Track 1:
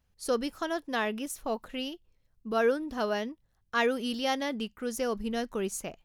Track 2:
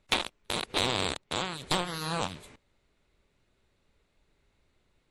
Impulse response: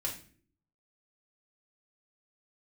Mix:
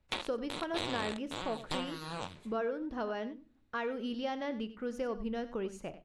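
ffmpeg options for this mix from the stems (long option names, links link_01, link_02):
-filter_complex "[0:a]acompressor=threshold=-29dB:ratio=6,aemphasis=mode=reproduction:type=75fm,volume=-4.5dB,asplit=3[link_01][link_02][link_03];[link_02]volume=-12.5dB[link_04];[link_03]volume=-13dB[link_05];[1:a]volume=-9.5dB,asplit=2[link_06][link_07];[link_07]volume=-16.5dB[link_08];[2:a]atrim=start_sample=2205[link_09];[link_04][link_08]amix=inputs=2:normalize=0[link_10];[link_10][link_09]afir=irnorm=-1:irlink=0[link_11];[link_05]aecho=0:1:95:1[link_12];[link_01][link_06][link_11][link_12]amix=inputs=4:normalize=0,highshelf=frequency=7600:gain=-8"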